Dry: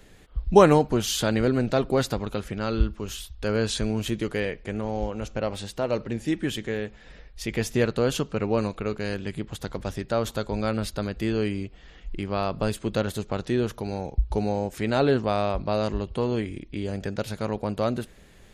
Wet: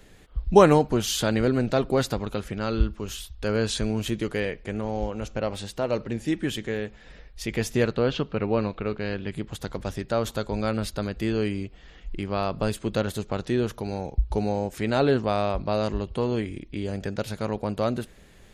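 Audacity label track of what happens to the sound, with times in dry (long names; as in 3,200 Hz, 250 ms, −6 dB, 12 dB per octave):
7.960000	9.320000	low-pass filter 4,300 Hz 24 dB per octave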